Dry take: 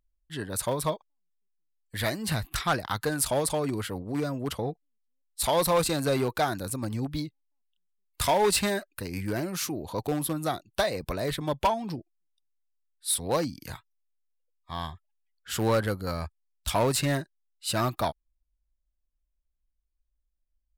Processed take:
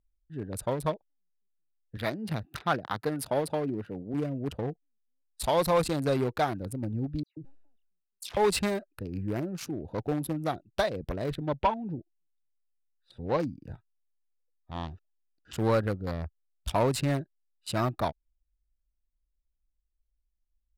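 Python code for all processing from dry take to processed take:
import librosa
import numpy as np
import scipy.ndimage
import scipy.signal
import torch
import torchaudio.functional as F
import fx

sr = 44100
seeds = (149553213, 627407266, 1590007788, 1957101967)

y = fx.chain(x, sr, fx.highpass(hz=140.0, slope=12),
    fx.peak_eq(hz=7500.0, db=-8.5, octaves=0.57), at=(1.97, 4.14))
y = fx.chain(y, sr, fx.low_shelf(hz=300.0, db=-8.5),
    fx.dispersion(late='lows', ms=140.0, hz=2300.0),
    fx.sustainer(db_per_s=67.0), at=(7.23, 8.37))
y = fx.chain(y, sr, fx.lowpass(hz=3500.0, slope=12),
    fx.notch(hz=670.0, q=15.0), at=(11.45, 13.4))
y = fx.chain(y, sr, fx.crossing_spikes(level_db=-32.0),
    fx.lowpass(hz=5900.0, slope=24),
    fx.peak_eq(hz=310.0, db=8.5, octaves=0.55), at=(14.75, 15.53))
y = fx.wiener(y, sr, points=41)
y = fx.high_shelf(y, sr, hz=5000.0, db=-8.0)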